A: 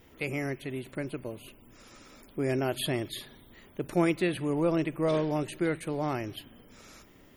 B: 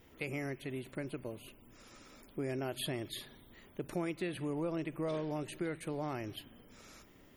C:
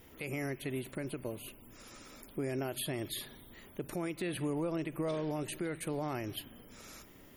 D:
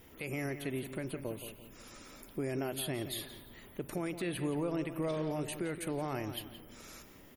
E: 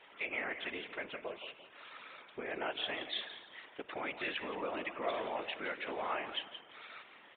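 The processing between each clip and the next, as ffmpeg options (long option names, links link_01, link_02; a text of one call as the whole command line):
ffmpeg -i in.wav -af "acompressor=threshold=-31dB:ratio=3,volume=-4dB" out.wav
ffmpeg -i in.wav -af "equalizer=frequency=13000:width=0.76:gain=8.5,alimiter=level_in=7dB:limit=-24dB:level=0:latency=1:release=97,volume=-7dB,volume=3.5dB" out.wav
ffmpeg -i in.wav -filter_complex "[0:a]asplit=2[link_01][link_02];[link_02]adelay=172,lowpass=frequency=4000:poles=1,volume=-10.5dB,asplit=2[link_03][link_04];[link_04]adelay=172,lowpass=frequency=4000:poles=1,volume=0.34,asplit=2[link_05][link_06];[link_06]adelay=172,lowpass=frequency=4000:poles=1,volume=0.34,asplit=2[link_07][link_08];[link_08]adelay=172,lowpass=frequency=4000:poles=1,volume=0.34[link_09];[link_01][link_03][link_05][link_07][link_09]amix=inputs=5:normalize=0" out.wav
ffmpeg -i in.wav -af "highpass=810,afftfilt=real='hypot(re,im)*cos(2*PI*random(0))':imag='hypot(re,im)*sin(2*PI*random(1))':win_size=512:overlap=0.75,aresample=8000,aresample=44100,volume=12dB" out.wav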